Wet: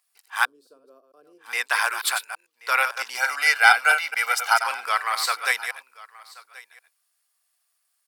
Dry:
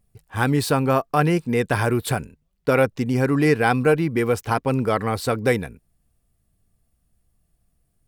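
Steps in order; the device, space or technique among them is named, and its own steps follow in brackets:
delay that plays each chunk backwards 112 ms, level −7.5 dB
headphones lying on a table (high-pass filter 1,000 Hz 24 dB per octave; parametric band 4,800 Hz +4.5 dB 0.52 octaves)
0:00.45–0:01.46: inverse Chebyshev low-pass filter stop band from 780 Hz, stop band 40 dB
0:03.17–0:04.64: comb filter 1.4 ms, depth 98%
single-tap delay 1,080 ms −21.5 dB
level +4.5 dB

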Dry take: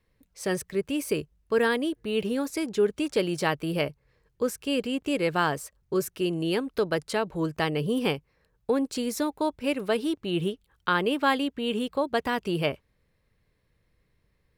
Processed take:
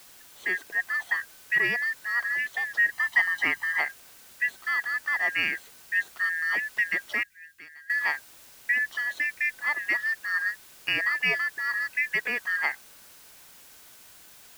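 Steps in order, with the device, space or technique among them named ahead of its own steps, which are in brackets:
split-band scrambled radio (band-splitting scrambler in four parts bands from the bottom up 2143; band-pass filter 340–2,900 Hz; white noise bed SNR 22 dB)
0:02.92–0:03.80: comb filter 1 ms, depth 61%
0:07.23–0:07.90: guitar amp tone stack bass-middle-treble 6-0-2

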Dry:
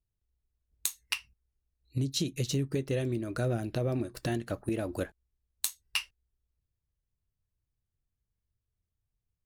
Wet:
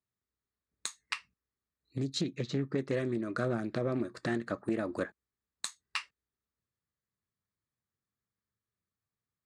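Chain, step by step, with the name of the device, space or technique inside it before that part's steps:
0:02.21–0:02.78: high-frequency loss of the air 120 metres
full-range speaker at full volume (highs frequency-modulated by the lows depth 0.27 ms; loudspeaker in its box 170–7,500 Hz, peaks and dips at 210 Hz +4 dB, 730 Hz −3 dB, 1,200 Hz +7 dB, 1,800 Hz +5 dB, 2,900 Hz −9 dB, 5,700 Hz −8 dB)

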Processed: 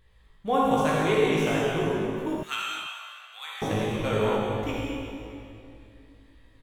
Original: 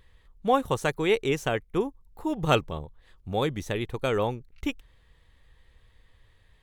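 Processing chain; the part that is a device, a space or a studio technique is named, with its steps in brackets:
tunnel (flutter between parallel walls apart 3.2 metres, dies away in 0.23 s; convolution reverb RT60 2.6 s, pre-delay 50 ms, DRR −5 dB)
0:02.43–0:03.62: high-pass filter 1,400 Hz 24 dB per octave
single-tap delay 435 ms −22.5 dB
level −5.5 dB

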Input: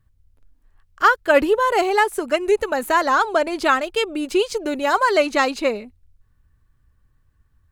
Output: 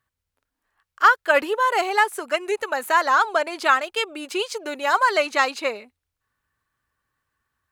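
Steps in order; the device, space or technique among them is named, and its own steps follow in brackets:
filter by subtraction (in parallel: low-pass filter 1,200 Hz 12 dB per octave + polarity inversion)
on the sum: level −1.5 dB

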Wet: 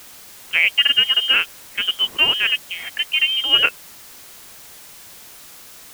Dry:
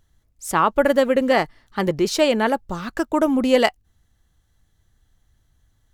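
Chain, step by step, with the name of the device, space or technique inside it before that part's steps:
scrambled radio voice (band-pass filter 300–2,800 Hz; voice inversion scrambler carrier 3,400 Hz; white noise bed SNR 20 dB)
level +1.5 dB

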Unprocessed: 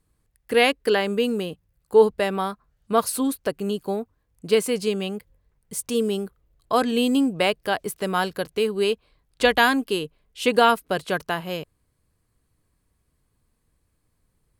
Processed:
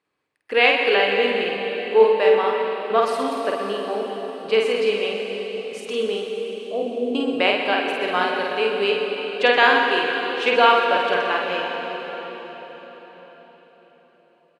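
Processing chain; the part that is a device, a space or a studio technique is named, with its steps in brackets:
0:06.22–0:07.15: Butterworth low-pass 580 Hz 36 dB per octave
station announcement (band-pass filter 420–3,600 Hz; parametric band 2,500 Hz +5.5 dB 0.38 octaves; loudspeakers that aren't time-aligned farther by 17 metres −3 dB, 43 metres −11 dB; convolution reverb RT60 4.9 s, pre-delay 95 ms, DRR 2.5 dB)
level +1 dB

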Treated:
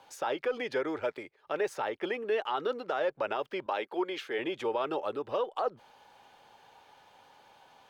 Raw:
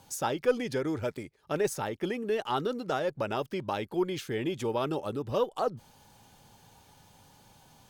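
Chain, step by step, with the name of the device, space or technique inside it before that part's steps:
0:03.66–0:04.39: high-pass filter 250 Hz 12 dB per octave
DJ mixer with the lows and highs turned down (three-way crossover with the lows and the highs turned down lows −21 dB, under 380 Hz, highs −18 dB, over 3,700 Hz; brickwall limiter −25 dBFS, peak gain reduction 9 dB)
level +4 dB

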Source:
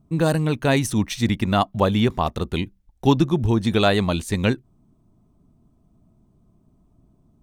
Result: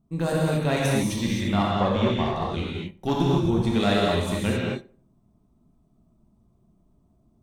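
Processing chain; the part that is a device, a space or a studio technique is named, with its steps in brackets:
0:01.51–0:02.59: low-pass filter 5,900 Hz 12 dB per octave
rockabilly slapback (tube saturation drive 8 dB, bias 0.45; tape delay 90 ms, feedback 35%, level −18 dB, low-pass 1,400 Hz)
reverb whose tail is shaped and stops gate 290 ms flat, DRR −4.5 dB
level −7 dB

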